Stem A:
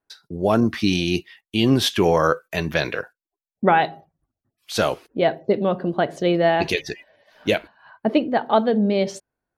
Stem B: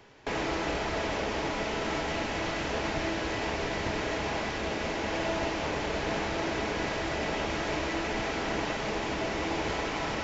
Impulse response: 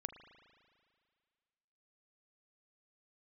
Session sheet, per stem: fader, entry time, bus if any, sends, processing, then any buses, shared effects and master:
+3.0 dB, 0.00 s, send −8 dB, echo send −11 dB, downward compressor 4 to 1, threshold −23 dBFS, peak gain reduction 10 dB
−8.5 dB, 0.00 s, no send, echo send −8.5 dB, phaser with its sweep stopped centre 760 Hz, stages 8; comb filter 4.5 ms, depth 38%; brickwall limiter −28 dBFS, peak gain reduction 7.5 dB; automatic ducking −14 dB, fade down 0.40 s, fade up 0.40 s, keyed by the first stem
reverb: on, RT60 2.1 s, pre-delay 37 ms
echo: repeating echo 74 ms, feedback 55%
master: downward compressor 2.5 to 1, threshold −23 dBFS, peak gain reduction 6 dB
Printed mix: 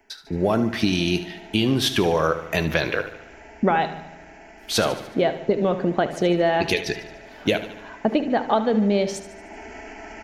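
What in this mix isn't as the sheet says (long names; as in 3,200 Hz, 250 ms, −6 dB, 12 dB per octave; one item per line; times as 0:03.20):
stem B −8.5 dB → −2.5 dB
master: missing downward compressor 2.5 to 1, threshold −23 dBFS, peak gain reduction 6 dB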